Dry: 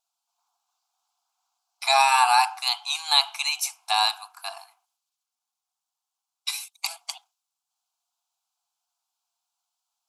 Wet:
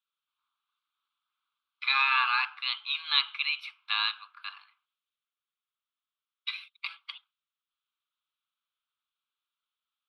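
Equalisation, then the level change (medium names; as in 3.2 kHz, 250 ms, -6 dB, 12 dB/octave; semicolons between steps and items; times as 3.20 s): elliptic band-pass 1.2–3.6 kHz, stop band 40 dB; 0.0 dB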